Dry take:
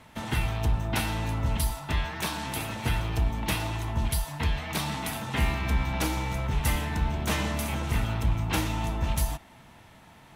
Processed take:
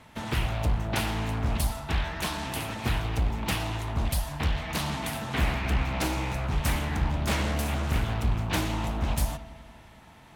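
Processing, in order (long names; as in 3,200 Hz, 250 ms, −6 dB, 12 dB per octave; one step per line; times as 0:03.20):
delay with a low-pass on its return 95 ms, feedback 72%, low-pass 3,200 Hz, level −16 dB
highs frequency-modulated by the lows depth 0.83 ms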